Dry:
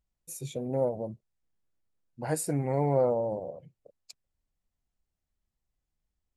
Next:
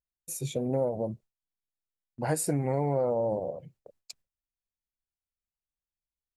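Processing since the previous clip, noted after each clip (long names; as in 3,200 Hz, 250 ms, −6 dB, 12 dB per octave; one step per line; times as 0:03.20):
noise gate with hold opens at −49 dBFS
downward compressor, threshold −28 dBFS, peak gain reduction 8 dB
level +4.5 dB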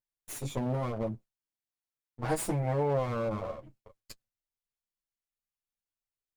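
lower of the sound and its delayed copy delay 9.1 ms
flanger 0.4 Hz, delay 5.7 ms, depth 4.2 ms, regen −33%
level +1.5 dB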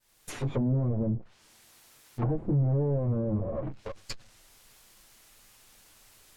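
fade in at the beginning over 0.82 s
power curve on the samples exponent 0.5
treble cut that deepens with the level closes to 320 Hz, closed at −25 dBFS
level +2 dB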